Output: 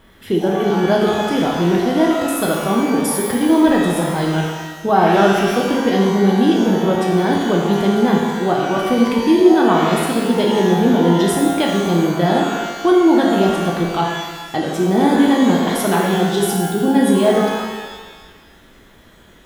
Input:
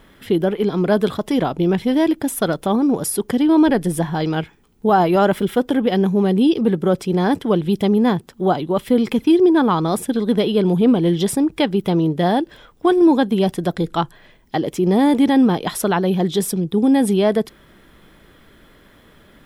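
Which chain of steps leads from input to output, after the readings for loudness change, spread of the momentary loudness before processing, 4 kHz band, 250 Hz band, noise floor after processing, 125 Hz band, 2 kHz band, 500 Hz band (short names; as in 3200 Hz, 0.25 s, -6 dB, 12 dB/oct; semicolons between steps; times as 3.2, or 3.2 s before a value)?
+2.0 dB, 8 LU, +4.5 dB, +1.5 dB, -46 dBFS, +1.5 dB, +6.0 dB, +2.5 dB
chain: shimmer reverb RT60 1.3 s, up +12 st, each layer -8 dB, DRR -1.5 dB; gain -2 dB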